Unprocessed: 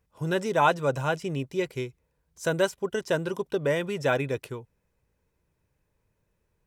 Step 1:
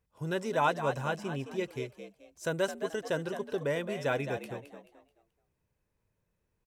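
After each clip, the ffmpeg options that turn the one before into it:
-filter_complex "[0:a]asplit=5[a][b][c][d][e];[b]adelay=216,afreqshift=73,volume=-9.5dB[f];[c]adelay=432,afreqshift=146,volume=-19.4dB[g];[d]adelay=648,afreqshift=219,volume=-29.3dB[h];[e]adelay=864,afreqshift=292,volume=-39.2dB[i];[a][f][g][h][i]amix=inputs=5:normalize=0,volume=-6dB"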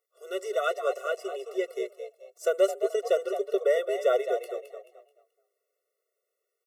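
-filter_complex "[0:a]highshelf=f=7.1k:g=6.5,acrossover=split=380|940|5000[a][b][c][d];[b]dynaudnorm=f=210:g=11:m=8dB[e];[a][e][c][d]amix=inputs=4:normalize=0,afftfilt=real='re*eq(mod(floor(b*sr/1024/370),2),1)':imag='im*eq(mod(floor(b*sr/1024/370),2),1)':win_size=1024:overlap=0.75,volume=2.5dB"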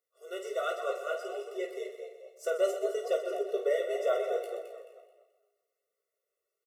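-filter_complex "[0:a]asplit=2[a][b];[b]aecho=0:1:17|51:0.531|0.398[c];[a][c]amix=inputs=2:normalize=0,flanger=delay=2.8:depth=5.1:regen=83:speed=1.3:shape=triangular,asplit=2[d][e];[e]aecho=0:1:126|252|378|504|630:0.282|0.144|0.0733|0.0374|0.0191[f];[d][f]amix=inputs=2:normalize=0,volume=-1.5dB"

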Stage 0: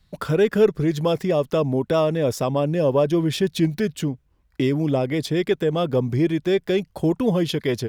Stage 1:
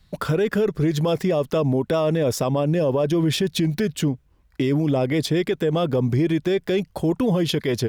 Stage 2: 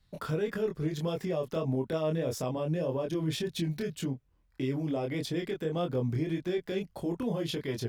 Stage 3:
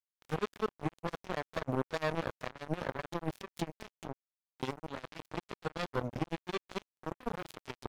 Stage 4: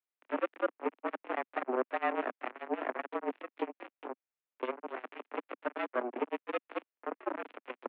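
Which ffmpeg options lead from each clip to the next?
-af "alimiter=limit=-17.5dB:level=0:latency=1:release=44,volume=4dB"
-af "flanger=delay=22.5:depth=3.4:speed=1.7,volume=-8dB"
-af "acrusher=bits=3:mix=0:aa=0.5"
-af "highpass=f=150:t=q:w=0.5412,highpass=f=150:t=q:w=1.307,lowpass=f=2.6k:t=q:w=0.5176,lowpass=f=2.6k:t=q:w=0.7071,lowpass=f=2.6k:t=q:w=1.932,afreqshift=120,volume=2dB"

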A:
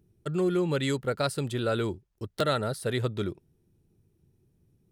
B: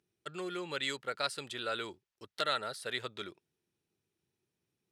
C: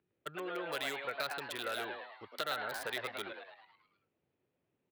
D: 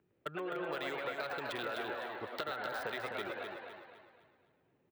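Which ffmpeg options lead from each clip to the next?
-af "bandpass=f=3k:t=q:w=0.58:csg=0"
-filter_complex "[0:a]acrossover=split=360|2300[a][b][c];[a]acompressor=threshold=-55dB:ratio=4[d];[b]acompressor=threshold=-38dB:ratio=4[e];[c]acompressor=threshold=-42dB:ratio=4[f];[d][e][f]amix=inputs=3:normalize=0,acrossover=split=3000[g][h];[g]asplit=8[i][j][k][l][m][n][o][p];[j]adelay=107,afreqshift=140,volume=-3.5dB[q];[k]adelay=214,afreqshift=280,volume=-9.2dB[r];[l]adelay=321,afreqshift=420,volume=-14.9dB[s];[m]adelay=428,afreqshift=560,volume=-20.5dB[t];[n]adelay=535,afreqshift=700,volume=-26.2dB[u];[o]adelay=642,afreqshift=840,volume=-31.9dB[v];[p]adelay=749,afreqshift=980,volume=-37.6dB[w];[i][q][r][s][t][u][v][w]amix=inputs=8:normalize=0[x];[h]acrusher=bits=6:mix=0:aa=0.000001[y];[x][y]amix=inputs=2:normalize=0,volume=1dB"
-af "equalizer=f=11k:t=o:w=2.3:g=-14,acompressor=threshold=-44dB:ratio=6,aecho=1:1:255|510|765|1020|1275:0.501|0.195|0.0762|0.0297|0.0116,volume=7.5dB"

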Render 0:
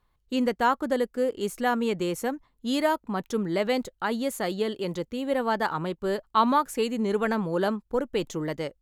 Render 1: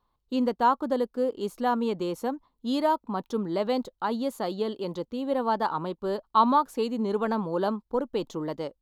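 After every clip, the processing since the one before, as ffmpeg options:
-af "equalizer=f=250:t=o:w=1:g=6,equalizer=f=500:t=o:w=1:g=3,equalizer=f=1k:t=o:w=1:g=10,equalizer=f=2k:t=o:w=1:g=-7,equalizer=f=4k:t=o:w=1:g=7,equalizer=f=8k:t=o:w=1:g=-5,volume=-7dB"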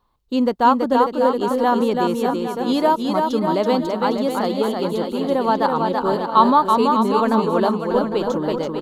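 -af "aecho=1:1:330|594|805.2|974.2|1109:0.631|0.398|0.251|0.158|0.1,volume=7dB"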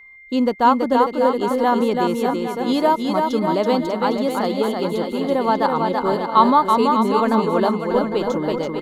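-af "aeval=exprs='val(0)+0.00794*sin(2*PI*2100*n/s)':c=same"

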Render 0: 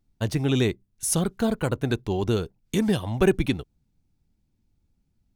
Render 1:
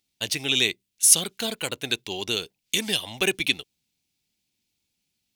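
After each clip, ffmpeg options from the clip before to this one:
-af "highpass=f=640:p=1,highshelf=f=1.9k:t=q:w=1.5:g=11,volume=-1dB"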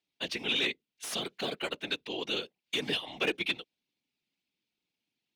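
-filter_complex "[0:a]afftfilt=real='hypot(re,im)*cos(2*PI*random(0))':imag='hypot(re,im)*sin(2*PI*random(1))':win_size=512:overlap=0.75,volume=24.5dB,asoftclip=hard,volume=-24.5dB,acrossover=split=170 4200:gain=0.178 1 0.126[a][b][c];[a][b][c]amix=inputs=3:normalize=0,volume=2.5dB"

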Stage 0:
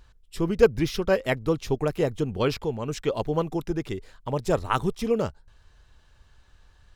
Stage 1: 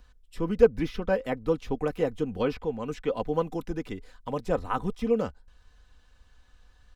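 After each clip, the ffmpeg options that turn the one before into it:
-filter_complex "[0:a]aecho=1:1:4:0.53,acrossover=split=340|1300|2900[a][b][c][d];[c]alimiter=level_in=4.5dB:limit=-24dB:level=0:latency=1:release=130,volume=-4.5dB[e];[d]acompressor=threshold=-52dB:ratio=4[f];[a][b][e][f]amix=inputs=4:normalize=0,volume=-3.5dB"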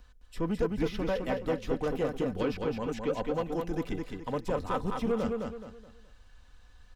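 -filter_complex "[0:a]acrossover=split=3200[a][b];[a]alimiter=limit=-17.5dB:level=0:latency=1:release=216[c];[c][b]amix=inputs=2:normalize=0,asoftclip=type=tanh:threshold=-23dB,aecho=1:1:212|424|636|848:0.631|0.215|0.0729|0.0248"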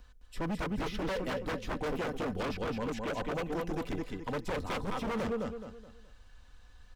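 -af "aeval=exprs='0.0376*(abs(mod(val(0)/0.0376+3,4)-2)-1)':c=same"

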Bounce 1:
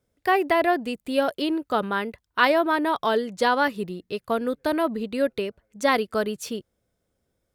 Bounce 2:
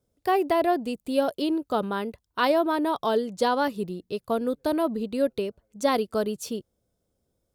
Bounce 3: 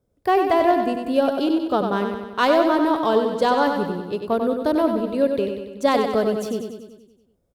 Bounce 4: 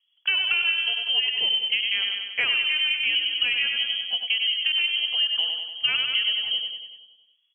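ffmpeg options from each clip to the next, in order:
-af "equalizer=f=1.9k:w=1.1:g=-10"
-filter_complex "[0:a]asplit=2[a][b];[b]adynamicsmooth=sensitivity=3.5:basefreq=2.9k,volume=2.5dB[c];[a][c]amix=inputs=2:normalize=0,aecho=1:1:95|190|285|380|475|570|665|760:0.501|0.291|0.169|0.0978|0.0567|0.0329|0.0191|0.0111,volume=-3dB"
-af "lowpass=f=2.9k:t=q:w=0.5098,lowpass=f=2.9k:t=q:w=0.6013,lowpass=f=2.9k:t=q:w=0.9,lowpass=f=2.9k:t=q:w=2.563,afreqshift=-3400,acompressor=threshold=-20dB:ratio=6"

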